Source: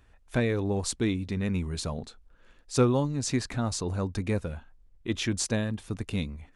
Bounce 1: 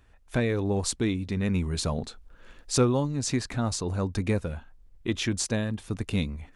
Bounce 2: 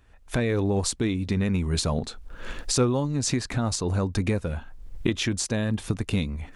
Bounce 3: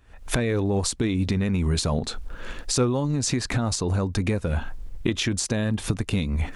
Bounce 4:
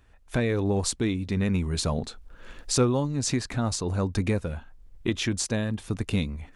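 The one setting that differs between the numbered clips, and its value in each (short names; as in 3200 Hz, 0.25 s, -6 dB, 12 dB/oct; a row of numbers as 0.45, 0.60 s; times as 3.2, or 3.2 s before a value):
recorder AGC, rising by: 5.2, 33, 87, 14 dB/s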